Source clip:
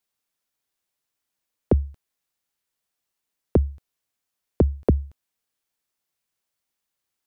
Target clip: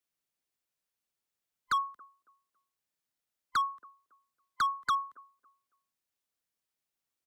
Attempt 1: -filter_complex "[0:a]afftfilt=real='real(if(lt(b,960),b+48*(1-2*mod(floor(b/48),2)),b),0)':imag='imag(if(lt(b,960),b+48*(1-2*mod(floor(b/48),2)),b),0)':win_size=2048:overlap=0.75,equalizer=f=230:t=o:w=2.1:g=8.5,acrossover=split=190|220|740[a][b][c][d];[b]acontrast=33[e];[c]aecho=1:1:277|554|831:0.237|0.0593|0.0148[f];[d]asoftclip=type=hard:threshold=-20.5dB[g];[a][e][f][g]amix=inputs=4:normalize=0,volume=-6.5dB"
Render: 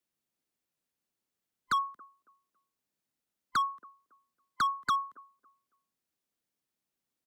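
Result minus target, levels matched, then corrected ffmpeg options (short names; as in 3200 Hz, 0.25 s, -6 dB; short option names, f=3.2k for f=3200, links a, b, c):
250 Hz band +7.5 dB
-filter_complex "[0:a]afftfilt=real='real(if(lt(b,960),b+48*(1-2*mod(floor(b/48),2)),b),0)':imag='imag(if(lt(b,960),b+48*(1-2*mod(floor(b/48),2)),b),0)':win_size=2048:overlap=0.75,acrossover=split=190|220|740[a][b][c][d];[b]acontrast=33[e];[c]aecho=1:1:277|554|831:0.237|0.0593|0.0148[f];[d]asoftclip=type=hard:threshold=-20.5dB[g];[a][e][f][g]amix=inputs=4:normalize=0,volume=-6.5dB"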